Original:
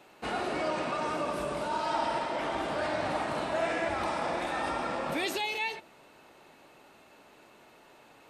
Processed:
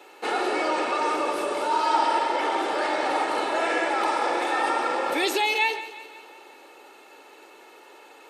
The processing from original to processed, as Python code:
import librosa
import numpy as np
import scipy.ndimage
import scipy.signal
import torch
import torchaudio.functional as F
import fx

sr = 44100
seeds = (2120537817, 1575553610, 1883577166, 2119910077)

y = scipy.signal.sosfilt(scipy.signal.butter(4, 270.0, 'highpass', fs=sr, output='sos'), x)
y = y + 0.48 * np.pad(y, (int(2.3 * sr / 1000.0), 0))[:len(y)]
y = fx.echo_feedback(y, sr, ms=176, feedback_pct=54, wet_db=-15)
y = y * 10.0 ** (6.5 / 20.0)